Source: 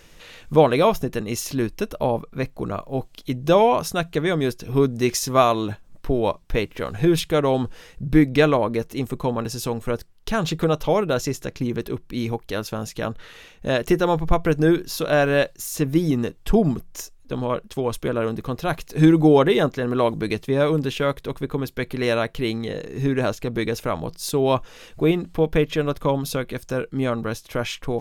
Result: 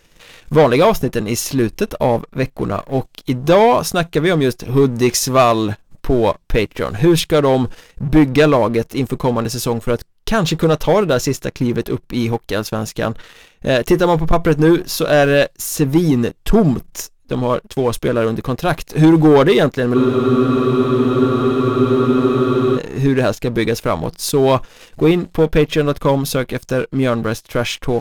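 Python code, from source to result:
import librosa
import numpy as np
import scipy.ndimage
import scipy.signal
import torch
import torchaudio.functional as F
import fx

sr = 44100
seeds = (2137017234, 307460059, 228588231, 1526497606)

y = fx.leveller(x, sr, passes=2)
y = fx.spec_freeze(y, sr, seeds[0], at_s=19.97, hold_s=2.8)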